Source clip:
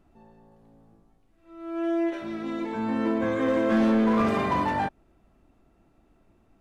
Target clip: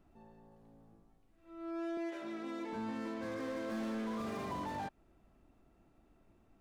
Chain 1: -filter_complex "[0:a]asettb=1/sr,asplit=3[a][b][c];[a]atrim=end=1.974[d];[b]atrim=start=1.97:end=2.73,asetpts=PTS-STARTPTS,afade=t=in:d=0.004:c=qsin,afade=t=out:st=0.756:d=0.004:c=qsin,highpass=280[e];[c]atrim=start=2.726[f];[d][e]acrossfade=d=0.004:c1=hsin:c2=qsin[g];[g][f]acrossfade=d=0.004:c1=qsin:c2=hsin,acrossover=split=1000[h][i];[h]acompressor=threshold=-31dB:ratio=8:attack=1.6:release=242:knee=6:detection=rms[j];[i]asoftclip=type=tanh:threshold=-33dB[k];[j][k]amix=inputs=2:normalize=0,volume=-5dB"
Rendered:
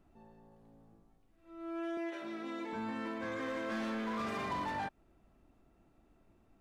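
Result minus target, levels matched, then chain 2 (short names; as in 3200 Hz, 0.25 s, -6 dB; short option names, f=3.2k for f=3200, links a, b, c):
soft clip: distortion -8 dB
-filter_complex "[0:a]asettb=1/sr,asplit=3[a][b][c];[a]atrim=end=1.974[d];[b]atrim=start=1.97:end=2.73,asetpts=PTS-STARTPTS,afade=t=in:d=0.004:c=qsin,afade=t=out:st=0.756:d=0.004:c=qsin,highpass=280[e];[c]atrim=start=2.726[f];[d][e]acrossfade=d=0.004:c1=hsin:c2=qsin[g];[g][f]acrossfade=d=0.004:c1=qsin:c2=hsin,acrossover=split=1000[h][i];[h]acompressor=threshold=-31dB:ratio=8:attack=1.6:release=242:knee=6:detection=rms[j];[i]asoftclip=type=tanh:threshold=-44dB[k];[j][k]amix=inputs=2:normalize=0,volume=-5dB"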